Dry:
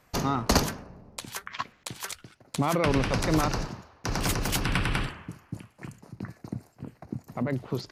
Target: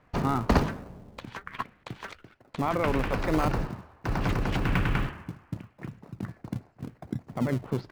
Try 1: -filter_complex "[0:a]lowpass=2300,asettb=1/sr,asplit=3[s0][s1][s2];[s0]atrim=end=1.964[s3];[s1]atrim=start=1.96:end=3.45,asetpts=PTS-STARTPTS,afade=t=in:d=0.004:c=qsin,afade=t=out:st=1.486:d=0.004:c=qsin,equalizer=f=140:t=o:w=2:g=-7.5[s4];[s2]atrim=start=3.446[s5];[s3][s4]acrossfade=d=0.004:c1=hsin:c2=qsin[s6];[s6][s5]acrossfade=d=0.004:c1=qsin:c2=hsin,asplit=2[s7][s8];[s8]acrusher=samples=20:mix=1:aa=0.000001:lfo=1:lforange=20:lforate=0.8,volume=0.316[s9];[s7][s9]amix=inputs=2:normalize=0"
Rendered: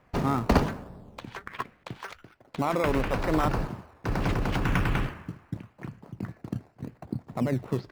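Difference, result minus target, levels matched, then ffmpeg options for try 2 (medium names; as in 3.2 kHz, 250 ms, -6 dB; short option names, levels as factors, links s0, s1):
decimation with a swept rate: distortion -5 dB
-filter_complex "[0:a]lowpass=2300,asettb=1/sr,asplit=3[s0][s1][s2];[s0]atrim=end=1.964[s3];[s1]atrim=start=1.96:end=3.45,asetpts=PTS-STARTPTS,afade=t=in:d=0.004:c=qsin,afade=t=out:st=1.486:d=0.004:c=qsin,equalizer=f=140:t=o:w=2:g=-7.5[s4];[s2]atrim=start=3.446[s5];[s3][s4]acrossfade=d=0.004:c1=hsin:c2=qsin[s6];[s6][s5]acrossfade=d=0.004:c1=qsin:c2=hsin,asplit=2[s7][s8];[s8]acrusher=samples=47:mix=1:aa=0.000001:lfo=1:lforange=47:lforate=0.8,volume=0.316[s9];[s7][s9]amix=inputs=2:normalize=0"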